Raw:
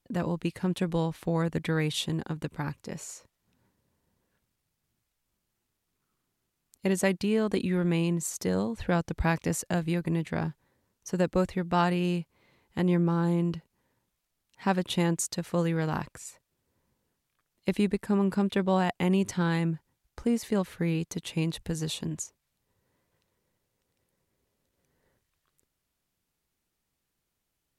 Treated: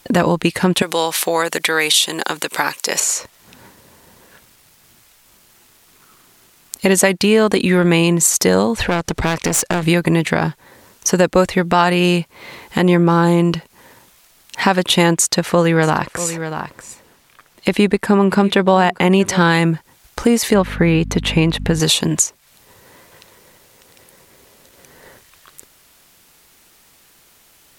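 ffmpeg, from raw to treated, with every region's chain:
-filter_complex "[0:a]asettb=1/sr,asplit=3[a][b][c];[a]atrim=end=0.824[d];[b]atrim=start=0.82:end=3,asetpts=PTS-STARTPTS,afade=t=in:d=0.004:c=qsin,afade=t=out:st=2.176:d=0.004:c=qsin,highshelf=f=3.1k:g=11,acompressor=threshold=-32dB:ratio=2:attack=3.2:release=140:knee=1:detection=peak,highpass=410[e];[c]atrim=start=2.996[f];[d][e]acrossfade=d=0.004:c1=hsin:c2=qsin[g];[g][f]acrossfade=d=0.004:c1=qsin:c2=hsin,asettb=1/sr,asplit=3[h][i][j];[h]atrim=end=8.834[k];[i]atrim=start=8.83:end=9.83,asetpts=PTS-STARTPTS,afade=t=in:d=0.004:c=qsin,afade=t=out:st=0.996:d=0.004:c=qsin,lowpass=11k,acompressor=threshold=-33dB:ratio=2.5:attack=3.2:release=140:knee=1:detection=peak,aeval=exprs='clip(val(0),-1,0.0106)':c=same[l];[j]atrim=start=9.826[m];[k][l]acrossfade=d=0.004:c1=hsin:c2=qsin[n];[n][m]acrossfade=d=0.004:c1=qsin:c2=hsin,asettb=1/sr,asplit=3[o][p][q];[o]atrim=end=15.144[r];[p]atrim=start=15.14:end=19.38,asetpts=PTS-STARTPTS,afade=t=in:d=0.004:c=qsin,afade=t=out:st=4.236:d=0.004:c=qsin,highshelf=f=4k:g=-6.5,aecho=1:1:638:0.106,atrim=end_sample=186984[s];[q]atrim=start=19.376[t];[r][s]acrossfade=d=0.004:c1=hsin:c2=qsin[u];[u][t]acrossfade=d=0.004:c1=qsin:c2=hsin,asettb=1/sr,asplit=3[v][w][x];[v]atrim=end=20.544[y];[w]atrim=start=20.54:end=21.8,asetpts=PTS-STARTPTS,afade=t=in:d=0.004:c=qsin,afade=t=out:st=1.256:d=0.004:c=qsin,aeval=exprs='val(0)+0.01*(sin(2*PI*50*n/s)+sin(2*PI*2*50*n/s)/2+sin(2*PI*3*50*n/s)/3+sin(2*PI*4*50*n/s)/4+sin(2*PI*5*50*n/s)/5)':c=same,bass=f=250:g=2,treble=f=4k:g=-14[z];[x]atrim=start=21.796[aa];[y][z]acrossfade=d=0.004:c1=hsin:c2=qsin[ab];[ab][aa]acrossfade=d=0.004:c1=qsin:c2=hsin,lowshelf=f=310:g=-11.5,acompressor=threshold=-52dB:ratio=2,alimiter=level_in=32.5dB:limit=-1dB:release=50:level=0:latency=1,volume=-1dB"

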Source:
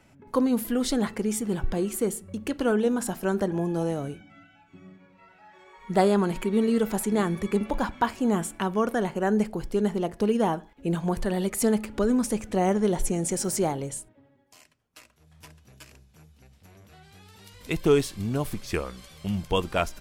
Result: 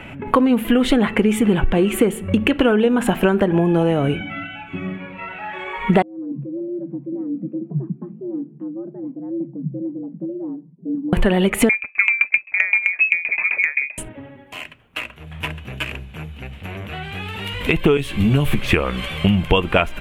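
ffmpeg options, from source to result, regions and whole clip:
-filter_complex "[0:a]asettb=1/sr,asplit=3[a][b][c];[a]atrim=end=6.024[d];[b]atrim=start=6.02:end=11.13,asetpts=PTS-STARTPTS,afade=t=in:d=0.004:c=qsin,afade=t=out:st=5.106:d=0.004:c=qsin,flanger=delay=4.5:depth=2.5:regen=-68:speed=1.1:shape=triangular,afreqshift=120,asuperpass=centerf=200:order=4:qfactor=2.7[e];[c]atrim=start=11.126[f];[d][e]acrossfade=d=0.004:c1=hsin:c2=qsin[g];[g][f]acrossfade=d=0.004:c1=qsin:c2=hsin,asettb=1/sr,asplit=3[h][i][j];[h]atrim=end=11.694[k];[i]atrim=start=11.69:end=13.98,asetpts=PTS-STARTPTS,afade=t=in:d=0.004:c=qsin,afade=t=out:st=2.286:d=0.004:c=qsin,agate=range=-14dB:threshold=-34dB:ratio=16:release=100:detection=peak,lowpass=f=2.2k:t=q:w=0.5098,lowpass=f=2.2k:t=q:w=0.6013,lowpass=f=2.2k:t=q:w=0.9,lowpass=f=2.2k:t=q:w=2.563,afreqshift=-2600,aeval=exprs='val(0)*pow(10,-27*if(lt(mod(7.7*n/s,1),2*abs(7.7)/1000),1-mod(7.7*n/s,1)/(2*abs(7.7)/1000),(mod(7.7*n/s,1)-2*abs(7.7)/1000)/(1-2*abs(7.7)/1000))/20)':c=same[l];[j]atrim=start=13.976[m];[k][l]acrossfade=d=0.004:c1=hsin:c2=qsin[n];[n][m]acrossfade=d=0.004:c1=qsin:c2=hsin,asettb=1/sr,asplit=3[o][p][q];[o]atrim=end=17.974[r];[p]atrim=start=17.97:end=18.59,asetpts=PTS-STARTPTS,afade=t=in:d=0.004:c=qsin,afade=t=out:st=0.616:d=0.004:c=qsin,acrossover=split=130|3000[s][t][u];[t]acompressor=threshold=-37dB:ratio=2.5:attack=3.2:release=140:knee=2.83:detection=peak[v];[s][v][u]amix=inputs=3:normalize=0,asplit=2[w][x];[x]adelay=14,volume=-3.5dB[y];[w][y]amix=inputs=2:normalize=0,atrim=end_sample=27342[z];[q]atrim=start=18.586[aa];[r][z]acrossfade=d=0.004:c1=hsin:c2=qsin[ab];[ab][aa]acrossfade=d=0.004:c1=qsin:c2=hsin,highshelf=f=3.8k:t=q:w=3:g=-11,acompressor=threshold=-33dB:ratio=12,alimiter=level_in=22dB:limit=-1dB:release=50:level=0:latency=1,volume=-1dB"

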